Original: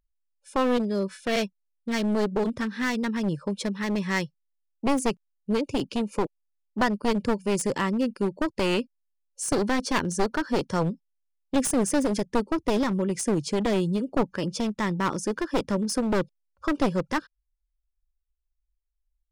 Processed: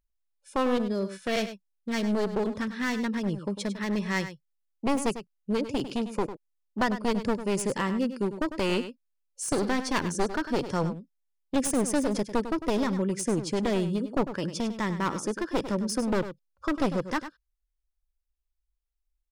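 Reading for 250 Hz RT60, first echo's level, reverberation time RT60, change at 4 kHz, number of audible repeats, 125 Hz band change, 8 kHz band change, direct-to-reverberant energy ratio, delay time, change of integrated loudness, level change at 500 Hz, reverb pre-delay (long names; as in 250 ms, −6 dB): no reverb audible, −11.5 dB, no reverb audible, −2.0 dB, 1, −2.0 dB, −2.0 dB, no reverb audible, 100 ms, −2.5 dB, −2.0 dB, no reverb audible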